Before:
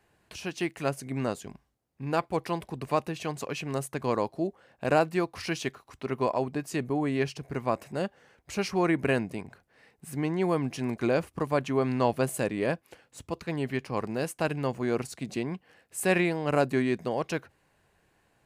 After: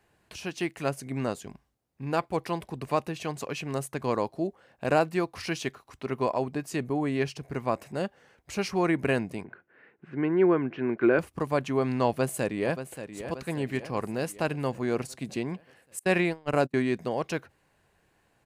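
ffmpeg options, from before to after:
ffmpeg -i in.wav -filter_complex "[0:a]asettb=1/sr,asplit=3[link_01][link_02][link_03];[link_01]atrim=end=9.444[link_04];[link_02]atrim=start=9.44:end=11.19,asetpts=PTS-STARTPTS,afade=type=in:duration=0.004:curve=qsin,afade=type=out:start_time=1.746:duration=0.004:curve=qsin,highpass=150,equalizer=frequency=360:width_type=q:width=4:gain=9,equalizer=frequency=770:width_type=q:width=4:gain=-4,equalizer=frequency=1500:width_type=q:width=4:gain=9,lowpass=frequency=2700:width=0.5412,lowpass=frequency=2700:width=1.3066[link_05];[link_03]atrim=start=11.186[link_06];[link_04][link_05]acrossfade=duration=0.004:curve1=hsin:curve2=qsin[link_07];[link_07][link_06]acrossfade=duration=0.004:curve1=qsin:curve2=hsin,asplit=2[link_08][link_09];[link_09]afade=type=in:start_time=12.08:duration=0.01,afade=type=out:start_time=13.24:duration=0.01,aecho=0:1:580|1160|1740|2320|2900|3480:0.298538|0.164196|0.0903078|0.0496693|0.0273181|0.015025[link_10];[link_08][link_10]amix=inputs=2:normalize=0,asettb=1/sr,asplit=3[link_11][link_12][link_13];[link_11]atrim=end=15.994[link_14];[link_12]atrim=start=15.99:end=16.74,asetpts=PTS-STARTPTS,afade=type=in:duration=0.004:curve=qsin,afade=type=out:start_time=0.746:duration=0.004:curve=qsin,agate=range=-32dB:threshold=-29dB:ratio=16:release=100:detection=peak[link_15];[link_13]atrim=start=16.736[link_16];[link_14][link_15]acrossfade=duration=0.004:curve1=hsin:curve2=qsin[link_17];[link_17][link_16]acrossfade=duration=0.004:curve1=qsin:curve2=hsin" out.wav

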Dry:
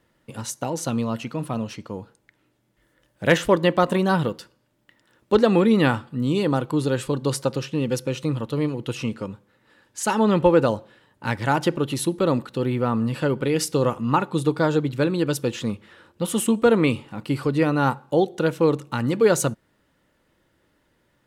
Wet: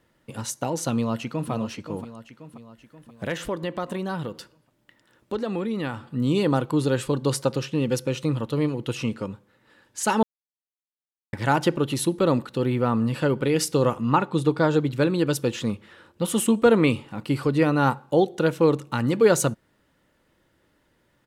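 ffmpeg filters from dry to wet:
ffmpeg -i in.wav -filter_complex "[0:a]asplit=2[link_01][link_02];[link_02]afade=type=in:start_time=0.94:duration=0.01,afade=type=out:start_time=1.51:duration=0.01,aecho=0:1:530|1060|1590|2120|2650|3180:0.298538|0.164196|0.0903078|0.0496693|0.0273181|0.015025[link_03];[link_01][link_03]amix=inputs=2:normalize=0,asettb=1/sr,asplit=3[link_04][link_05][link_06];[link_04]atrim=end=3.244[link_07];[link_05]atrim=start=3.24:end=6.12,asetpts=PTS-STARTPTS,afade=type=in:duration=0.004:curve=qsin,afade=type=out:start_time=2.876:duration=0.004:curve=qsin,acompressor=threshold=-33dB:ratio=2:attack=3.2:release=140:knee=1:detection=peak[link_08];[link_06]atrim=start=6.116[link_09];[link_07][link_08]acrossfade=duration=0.004:curve1=hsin:curve2=qsin[link_10];[link_10][link_09]acrossfade=duration=0.004:curve1=qsin:curve2=hsin,asettb=1/sr,asplit=3[link_11][link_12][link_13];[link_11]atrim=end=14.094[link_14];[link_12]atrim=start=14.09:end=14.74,asetpts=PTS-STARTPTS,afade=type=in:duration=0.004:curve=qsin,afade=type=out:start_time=0.646:duration=0.004:curve=qsin,highshelf=frequency=8200:gain=-8.5[link_15];[link_13]atrim=start=14.736[link_16];[link_14][link_15]acrossfade=duration=0.004:curve1=hsin:curve2=qsin[link_17];[link_17][link_16]acrossfade=duration=0.004:curve1=qsin:curve2=hsin,asplit=3[link_18][link_19][link_20];[link_18]atrim=end=10.23,asetpts=PTS-STARTPTS,afade=type=out:start_time=10.226:duration=0.004:curve=hsin[link_21];[link_19]atrim=start=10.23:end=11.33,asetpts=PTS-STARTPTS,volume=0[link_22];[link_20]atrim=start=11.33,asetpts=PTS-STARTPTS,afade=type=in:duration=0.004:curve=hsin[link_23];[link_21][link_22][link_23]concat=n=3:v=0:a=1" out.wav

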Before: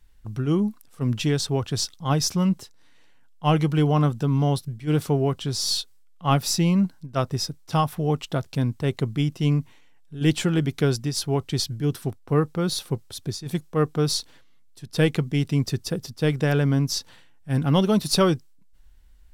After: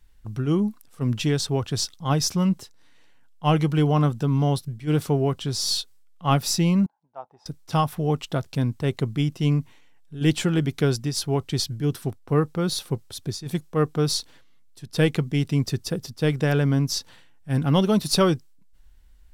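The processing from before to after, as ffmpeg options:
ffmpeg -i in.wav -filter_complex "[0:a]asettb=1/sr,asplit=3[link_01][link_02][link_03];[link_01]atrim=end=6.864[link_04];[link_02]atrim=start=6.86:end=7.46,asetpts=PTS-STARTPTS,afade=type=in:duration=0.004:curve=qsin,afade=type=out:start_time=0.596:duration=0.004:curve=qsin,bandpass=frequency=830:width_type=q:width=8.6[link_05];[link_03]atrim=start=7.456[link_06];[link_04][link_05]acrossfade=duration=0.004:curve1=hsin:curve2=qsin[link_07];[link_07][link_06]acrossfade=duration=0.004:curve1=qsin:curve2=hsin" out.wav

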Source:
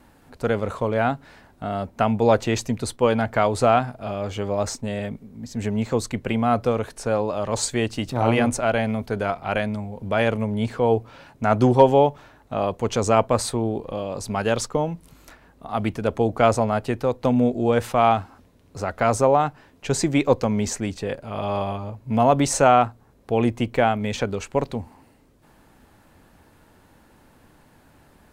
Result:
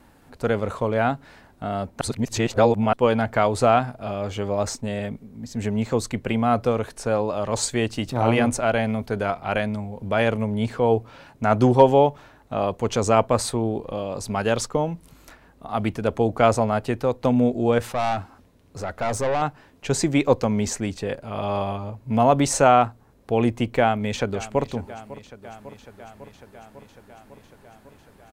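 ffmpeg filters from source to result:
ffmpeg -i in.wav -filter_complex "[0:a]asettb=1/sr,asplit=3[link_01][link_02][link_03];[link_01]atrim=end=17.784[link_04];[link_02]atrim=start=17.78:end=19.42,asetpts=PTS-STARTPTS,afade=type=in:duration=0.004:curve=qsin,afade=type=out:start_time=1.636:duration=0.004:curve=qsin,aeval=exprs='(tanh(8.91*val(0)+0.3)-tanh(0.3))/8.91':channel_layout=same[link_05];[link_03]atrim=start=19.416[link_06];[link_04][link_05]acrossfade=duration=0.004:curve1=hsin:curve2=qsin[link_07];[link_07][link_06]acrossfade=duration=0.004:curve1=qsin:curve2=hsin,asplit=2[link_08][link_09];[link_09]afade=type=in:start_time=23.79:duration=0.01,afade=type=out:start_time=24.73:duration=0.01,aecho=0:1:550|1100|1650|2200|2750|3300|3850|4400|4950|5500:0.149624|0.112218|0.0841633|0.0631224|0.0473418|0.0355064|0.0266298|0.0199723|0.0149793|0.0112344[link_10];[link_08][link_10]amix=inputs=2:normalize=0,asplit=3[link_11][link_12][link_13];[link_11]atrim=end=2.012[link_14];[link_12]atrim=start=2.008:end=2.932,asetpts=PTS-STARTPTS,areverse[link_15];[link_13]atrim=start=2.928[link_16];[link_14][link_15]acrossfade=duration=0.004:curve1=hsin:curve2=hsin[link_17];[link_17][link_16]acrossfade=duration=0.004:curve1=hsin:curve2=hsin" out.wav

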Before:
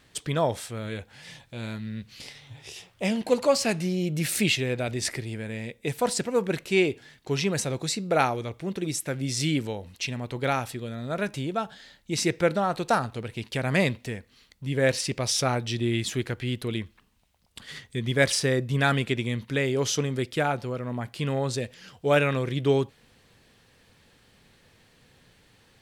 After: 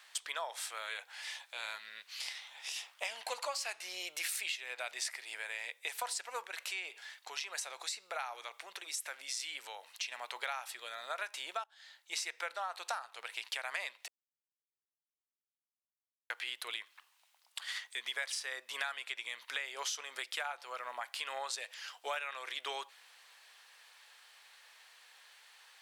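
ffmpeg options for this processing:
ffmpeg -i in.wav -filter_complex "[0:a]asettb=1/sr,asplit=3[link_01][link_02][link_03];[link_01]atrim=end=6.444[link_04];[link_02]atrim=start=6.44:end=10.12,asetpts=PTS-STARTPTS,afade=type=in:duration=0.004:curve=qsin,afade=type=out:start_time=3.676:duration=0.004:curve=qsin,acompressor=threshold=-36dB:ratio=2:attack=3.2:release=140:knee=1:detection=peak[link_05];[link_03]atrim=start=10.116[link_06];[link_04][link_05]acrossfade=duration=0.004:curve1=hsin:curve2=qsin[link_07];[link_07][link_06]acrossfade=duration=0.004:curve1=qsin:curve2=hsin,asplit=4[link_08][link_09][link_10][link_11];[link_08]atrim=end=11.64,asetpts=PTS-STARTPTS,afade=type=out:start_time=11.636:duration=0.004:curve=hsin:silence=0.0630957[link_12];[link_09]atrim=start=11.64:end=14.08,asetpts=PTS-STARTPTS,afade=type=in:duration=0.97:curve=qsin:silence=0.0630957,afade=type=out:start_time=2.436:duration=0.004:curve=hsin[link_13];[link_10]atrim=start=14.08:end=16.3,asetpts=PTS-STARTPTS,volume=0[link_14];[link_11]atrim=start=16.3,asetpts=PTS-STARTPTS,afade=type=in:duration=0.004:curve=hsin[link_15];[link_12][link_13][link_14][link_15]concat=n=4:v=0:a=1,highpass=frequency=820:width=0.5412,highpass=frequency=820:width=1.3066,acompressor=threshold=-38dB:ratio=8,volume=2.5dB" out.wav

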